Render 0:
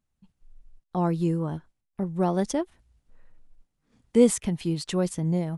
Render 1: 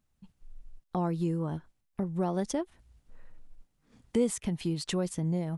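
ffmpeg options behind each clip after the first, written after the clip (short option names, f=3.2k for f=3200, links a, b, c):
-af "acompressor=threshold=-37dB:ratio=2,volume=3.5dB"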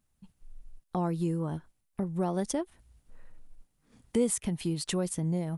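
-af "equalizer=f=9.9k:t=o:w=0.56:g=8"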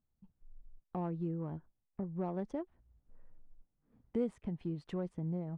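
-af "adynamicsmooth=sensitivity=1:basefreq=1.3k,volume=-7dB"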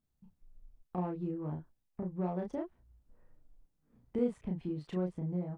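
-filter_complex "[0:a]asplit=2[a][b];[b]adelay=33,volume=-2.5dB[c];[a][c]amix=inputs=2:normalize=0"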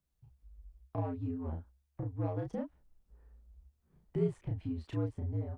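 -af "afreqshift=-70"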